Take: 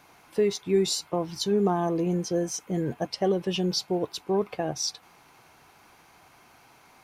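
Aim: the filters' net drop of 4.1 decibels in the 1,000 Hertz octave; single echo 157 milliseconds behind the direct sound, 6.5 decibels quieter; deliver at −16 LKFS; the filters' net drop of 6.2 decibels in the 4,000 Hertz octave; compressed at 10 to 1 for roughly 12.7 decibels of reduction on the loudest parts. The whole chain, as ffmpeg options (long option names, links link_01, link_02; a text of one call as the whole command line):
ffmpeg -i in.wav -af "equalizer=frequency=1000:width_type=o:gain=-6,equalizer=frequency=4000:width_type=o:gain=-8,acompressor=threshold=-32dB:ratio=10,aecho=1:1:157:0.473,volume=20.5dB" out.wav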